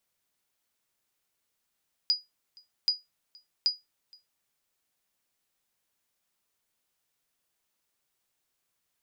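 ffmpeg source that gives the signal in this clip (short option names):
-f lavfi -i "aevalsrc='0.15*(sin(2*PI*4910*mod(t,0.78))*exp(-6.91*mod(t,0.78)/0.19)+0.0398*sin(2*PI*4910*max(mod(t,0.78)-0.47,0))*exp(-6.91*max(mod(t,0.78)-0.47,0)/0.19))':d=2.34:s=44100"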